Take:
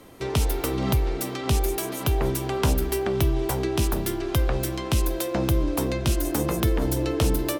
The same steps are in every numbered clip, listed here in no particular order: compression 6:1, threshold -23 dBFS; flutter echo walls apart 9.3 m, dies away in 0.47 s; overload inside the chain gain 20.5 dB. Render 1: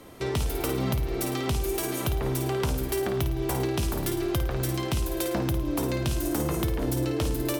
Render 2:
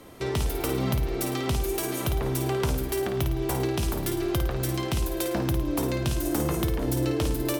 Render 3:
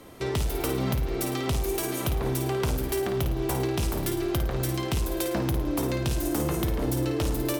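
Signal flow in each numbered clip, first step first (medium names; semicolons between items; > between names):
flutter echo > compression > overload inside the chain; compression > overload inside the chain > flutter echo; overload inside the chain > flutter echo > compression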